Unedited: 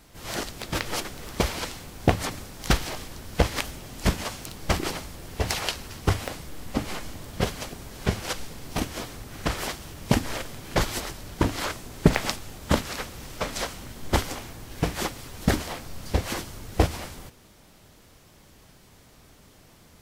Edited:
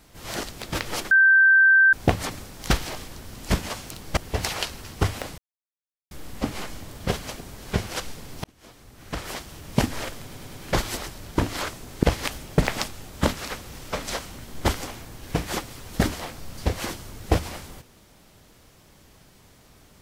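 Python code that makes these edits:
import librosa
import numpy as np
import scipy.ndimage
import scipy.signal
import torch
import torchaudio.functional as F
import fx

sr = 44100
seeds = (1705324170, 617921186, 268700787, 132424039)

y = fx.edit(x, sr, fx.bleep(start_s=1.11, length_s=0.82, hz=1560.0, db=-12.0),
    fx.move(start_s=3.36, length_s=0.55, to_s=12.06),
    fx.cut(start_s=4.72, length_s=0.51),
    fx.insert_silence(at_s=6.44, length_s=0.73),
    fx.fade_in_span(start_s=8.77, length_s=1.25),
    fx.stutter(start_s=10.56, slice_s=0.1, count=4), tone=tone)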